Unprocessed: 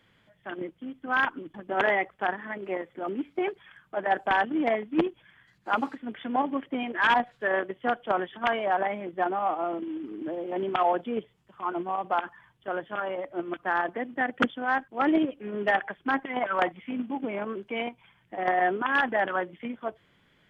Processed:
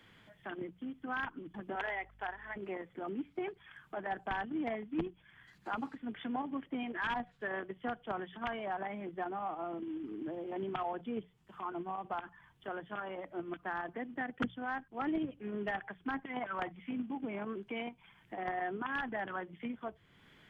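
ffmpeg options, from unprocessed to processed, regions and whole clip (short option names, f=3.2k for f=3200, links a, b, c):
-filter_complex "[0:a]asettb=1/sr,asplit=3[a][b][c];[a]atrim=end=1.754[d];[b]atrim=start=1.75:end=2.56,asetpts=PTS-STARTPTS,afade=t=in:d=0.004:c=qsin,afade=t=out:st=0.806:d=0.004:c=qsin,highpass=560,bandreject=f=1.2k:w=10,aeval=exprs='val(0)+0.000794*(sin(2*PI*50*n/s)+sin(2*PI*2*50*n/s)/2+sin(2*PI*3*50*n/s)/3+sin(2*PI*4*50*n/s)/4+sin(2*PI*5*50*n/s)/5)':c=same[e];[c]atrim=start=2.556[f];[d][e]acrossfade=d=0.004:c1=hsin:c2=qsin[g];[g][f]acrossfade=d=0.004:c1=qsin:c2=hsin,equalizer=f=560:w=5.8:g=-5.5,bandreject=f=60:t=h:w=6,bandreject=f=120:t=h:w=6,bandreject=f=180:t=h:w=6,acrossover=split=150[h][i];[i]acompressor=threshold=-51dB:ratio=2[j];[h][j]amix=inputs=2:normalize=0,volume=3dB"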